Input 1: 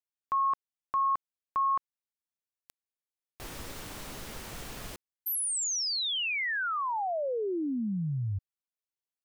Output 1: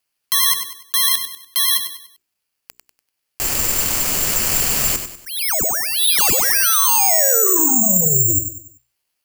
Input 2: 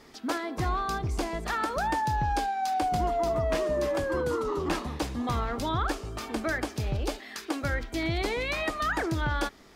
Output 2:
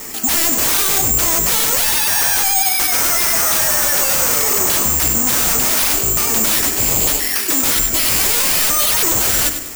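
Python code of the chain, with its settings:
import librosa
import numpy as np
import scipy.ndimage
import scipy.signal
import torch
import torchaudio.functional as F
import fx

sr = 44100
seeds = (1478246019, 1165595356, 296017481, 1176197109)

p1 = scipy.signal.sosfilt(scipy.signal.butter(4, 9500.0, 'lowpass', fs=sr, output='sos'), x)
p2 = fx.high_shelf_res(p1, sr, hz=3700.0, db=-8.5, q=3.0)
p3 = fx.hum_notches(p2, sr, base_hz=60, count=7)
p4 = fx.rider(p3, sr, range_db=5, speed_s=2.0)
p5 = p3 + (p4 * librosa.db_to_amplitude(-1.5))
p6 = fx.fold_sine(p5, sr, drive_db=17, ceiling_db=-9.0)
p7 = fx.vibrato(p6, sr, rate_hz=8.8, depth_cents=48.0)
p8 = p7 + fx.echo_feedback(p7, sr, ms=97, feedback_pct=39, wet_db=-9.0, dry=0)
p9 = (np.kron(p8[::6], np.eye(6)[0]) * 6)[:len(p8)]
y = p9 * librosa.db_to_amplitude(-11.5)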